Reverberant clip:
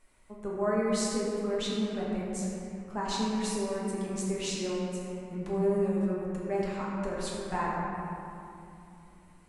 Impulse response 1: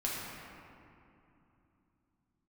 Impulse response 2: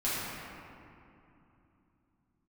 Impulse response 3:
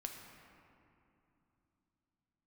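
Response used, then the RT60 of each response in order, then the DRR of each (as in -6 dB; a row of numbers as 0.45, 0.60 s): 1; 2.9, 2.9, 3.0 s; -6.0, -11.0, 2.0 dB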